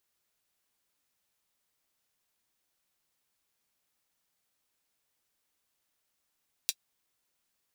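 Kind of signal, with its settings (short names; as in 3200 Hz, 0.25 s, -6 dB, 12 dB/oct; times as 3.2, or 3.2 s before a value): closed hi-hat, high-pass 3600 Hz, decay 0.06 s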